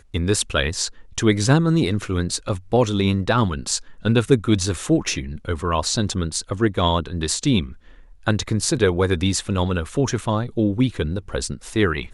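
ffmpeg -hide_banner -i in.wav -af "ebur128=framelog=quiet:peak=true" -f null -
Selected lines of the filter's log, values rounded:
Integrated loudness:
  I:         -21.4 LUFS
  Threshold: -31.5 LUFS
Loudness range:
  LRA:         2.0 LU
  Threshold: -41.5 LUFS
  LRA low:   -22.5 LUFS
  LRA high:  -20.5 LUFS
True peak:
  Peak:       -2.3 dBFS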